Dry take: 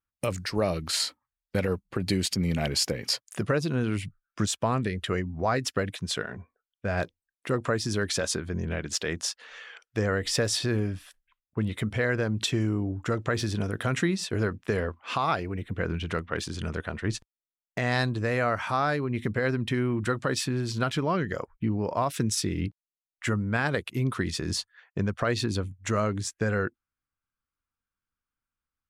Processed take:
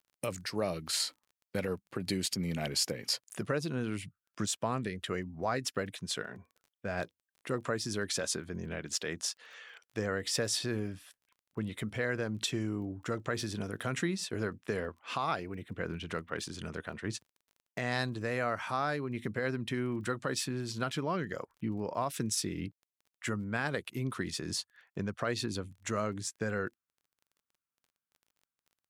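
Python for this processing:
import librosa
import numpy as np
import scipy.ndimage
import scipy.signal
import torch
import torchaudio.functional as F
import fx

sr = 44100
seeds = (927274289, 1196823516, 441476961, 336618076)

y = scipy.signal.sosfilt(scipy.signal.butter(2, 120.0, 'highpass', fs=sr, output='sos'), x)
y = fx.high_shelf(y, sr, hz=6800.0, db=5.5)
y = fx.dmg_crackle(y, sr, seeds[0], per_s=20.0, level_db=-44.0)
y = y * librosa.db_to_amplitude(-6.5)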